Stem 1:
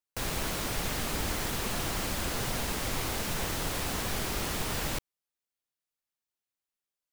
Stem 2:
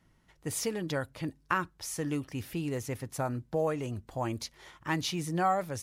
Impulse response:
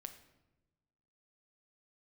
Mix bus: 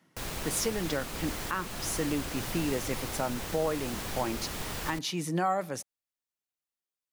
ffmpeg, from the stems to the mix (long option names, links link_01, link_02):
-filter_complex "[0:a]volume=-4dB[link_01];[1:a]highpass=frequency=160:width=0.5412,highpass=frequency=160:width=1.3066,volume=2dB,asplit=2[link_02][link_03];[link_03]volume=-10dB[link_04];[2:a]atrim=start_sample=2205[link_05];[link_04][link_05]afir=irnorm=-1:irlink=0[link_06];[link_01][link_02][link_06]amix=inputs=3:normalize=0,alimiter=limit=-18.5dB:level=0:latency=1:release=370"